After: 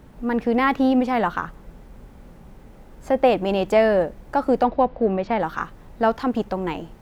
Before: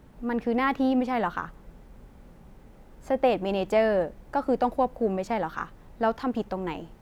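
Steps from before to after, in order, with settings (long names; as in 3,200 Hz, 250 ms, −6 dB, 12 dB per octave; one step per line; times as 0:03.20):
0:04.63–0:05.40: low-pass filter 4,200 Hz 24 dB per octave
level +5.5 dB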